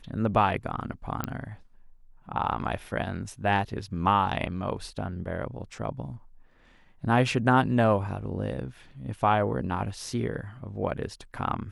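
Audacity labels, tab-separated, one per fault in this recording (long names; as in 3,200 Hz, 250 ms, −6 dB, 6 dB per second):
1.240000	1.240000	click −14 dBFS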